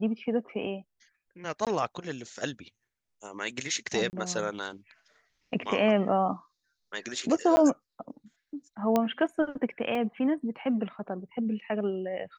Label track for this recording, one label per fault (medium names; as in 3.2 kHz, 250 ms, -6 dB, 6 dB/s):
1.650000	1.670000	dropout 17 ms
4.100000	4.130000	dropout 29 ms
7.560000	7.570000	dropout 10 ms
8.960000	8.960000	pop -12 dBFS
9.950000	9.950000	dropout 2.4 ms